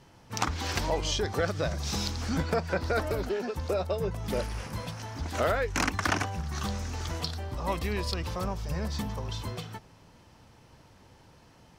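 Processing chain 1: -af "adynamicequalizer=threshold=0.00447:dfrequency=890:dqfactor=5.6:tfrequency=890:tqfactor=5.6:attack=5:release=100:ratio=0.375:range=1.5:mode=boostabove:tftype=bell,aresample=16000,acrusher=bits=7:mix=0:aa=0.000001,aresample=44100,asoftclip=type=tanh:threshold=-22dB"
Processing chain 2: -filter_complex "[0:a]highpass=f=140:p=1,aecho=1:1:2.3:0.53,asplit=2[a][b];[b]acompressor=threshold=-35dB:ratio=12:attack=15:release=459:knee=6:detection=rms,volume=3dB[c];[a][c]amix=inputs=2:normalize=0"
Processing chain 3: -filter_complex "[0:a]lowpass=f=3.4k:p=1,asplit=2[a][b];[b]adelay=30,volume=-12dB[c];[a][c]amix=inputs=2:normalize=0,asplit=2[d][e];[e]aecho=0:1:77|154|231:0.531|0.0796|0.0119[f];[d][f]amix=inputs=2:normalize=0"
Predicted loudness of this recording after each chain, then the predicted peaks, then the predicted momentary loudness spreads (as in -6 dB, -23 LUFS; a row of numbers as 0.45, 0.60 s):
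-33.0, -28.5, -31.0 LUFS; -22.0, -10.0, -13.5 dBFS; 7, 7, 8 LU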